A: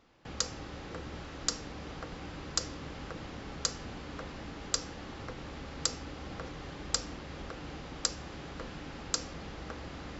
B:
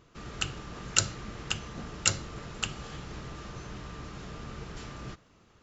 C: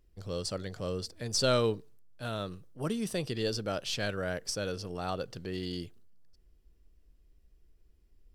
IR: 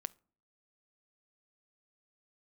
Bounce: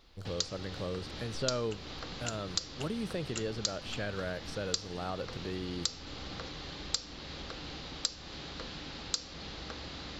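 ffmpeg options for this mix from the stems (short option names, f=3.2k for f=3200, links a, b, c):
-filter_complex "[0:a]equalizer=f=4.1k:t=o:w=0.97:g=13.5,volume=-2dB[a];[1:a]adelay=1300,volume=-11.5dB[b];[2:a]acrossover=split=2900[c][d];[d]acompressor=threshold=-51dB:ratio=4:attack=1:release=60[e];[c][e]amix=inputs=2:normalize=0,volume=1dB[f];[a][b][f]amix=inputs=3:normalize=0,acompressor=threshold=-35dB:ratio=2"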